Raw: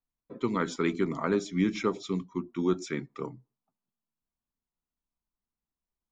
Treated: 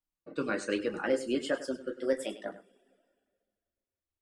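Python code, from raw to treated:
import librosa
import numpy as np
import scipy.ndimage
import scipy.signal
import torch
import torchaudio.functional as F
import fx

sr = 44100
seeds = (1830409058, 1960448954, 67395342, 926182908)

p1 = fx.speed_glide(x, sr, from_pct=111, to_pct=179)
p2 = fx.rev_double_slope(p1, sr, seeds[0], early_s=0.43, late_s=1.9, knee_db=-18, drr_db=3.0)
p3 = fx.dereverb_blind(p2, sr, rt60_s=0.53)
p4 = p3 + fx.echo_single(p3, sr, ms=101, db=-14.5, dry=0)
y = F.gain(torch.from_numpy(p4), -4.0).numpy()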